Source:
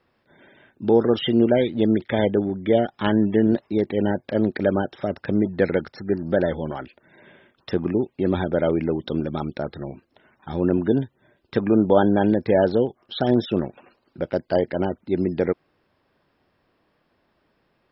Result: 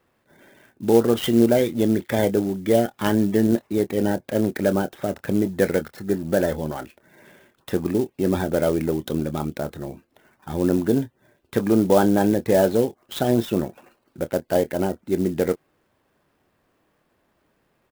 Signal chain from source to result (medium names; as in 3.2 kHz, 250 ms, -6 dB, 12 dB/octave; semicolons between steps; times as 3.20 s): doubling 26 ms -13 dB; sampling jitter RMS 0.033 ms